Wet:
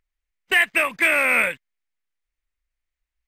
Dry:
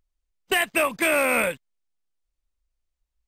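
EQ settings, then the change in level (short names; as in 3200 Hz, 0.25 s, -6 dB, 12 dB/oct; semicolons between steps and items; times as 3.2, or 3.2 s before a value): bell 2000 Hz +13 dB 1.1 oct; -4.5 dB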